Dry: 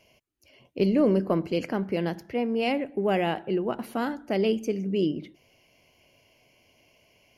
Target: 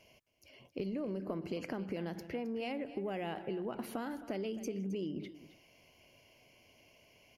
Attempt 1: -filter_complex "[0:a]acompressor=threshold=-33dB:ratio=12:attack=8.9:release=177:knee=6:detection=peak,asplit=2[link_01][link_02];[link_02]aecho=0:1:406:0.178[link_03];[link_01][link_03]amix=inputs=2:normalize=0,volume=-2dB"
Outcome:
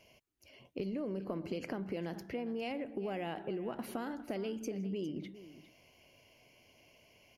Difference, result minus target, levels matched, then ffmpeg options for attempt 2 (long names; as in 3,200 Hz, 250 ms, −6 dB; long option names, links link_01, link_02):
echo 140 ms late
-filter_complex "[0:a]acompressor=threshold=-33dB:ratio=12:attack=8.9:release=177:knee=6:detection=peak,asplit=2[link_01][link_02];[link_02]aecho=0:1:266:0.178[link_03];[link_01][link_03]amix=inputs=2:normalize=0,volume=-2dB"